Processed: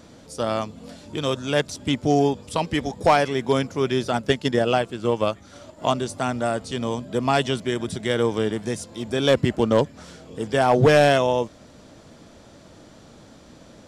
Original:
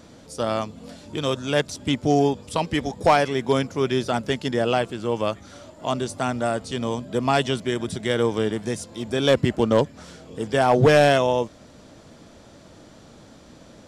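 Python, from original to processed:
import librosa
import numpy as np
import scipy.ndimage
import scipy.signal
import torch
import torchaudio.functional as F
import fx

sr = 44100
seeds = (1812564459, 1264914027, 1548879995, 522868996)

y = fx.transient(x, sr, attack_db=6, sustain_db=-3, at=(4.13, 5.93))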